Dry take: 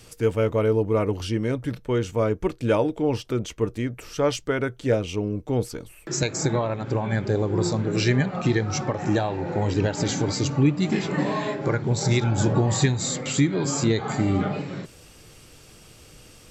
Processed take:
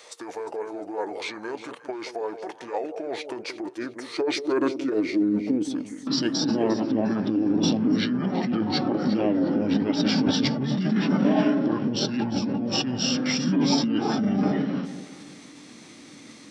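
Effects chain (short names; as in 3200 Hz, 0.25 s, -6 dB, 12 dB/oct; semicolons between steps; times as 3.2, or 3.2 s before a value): negative-ratio compressor -25 dBFS, ratio -1; on a send: echo with dull and thin repeats by turns 0.177 s, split 1000 Hz, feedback 54%, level -9 dB; on the sum: high-pass sweep 780 Hz -> 270 Hz, 2.95–6.01; formant shift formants -5 st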